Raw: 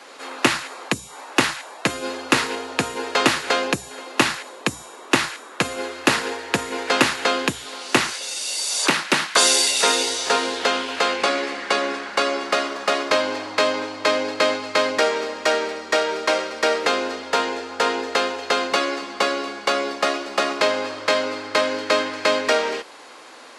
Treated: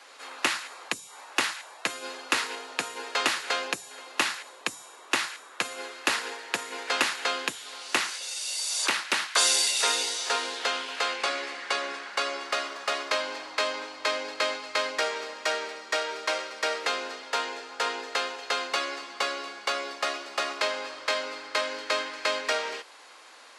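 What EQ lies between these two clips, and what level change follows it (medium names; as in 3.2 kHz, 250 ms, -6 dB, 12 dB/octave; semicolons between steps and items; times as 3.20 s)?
high-pass 920 Hz 6 dB/octave; -5.5 dB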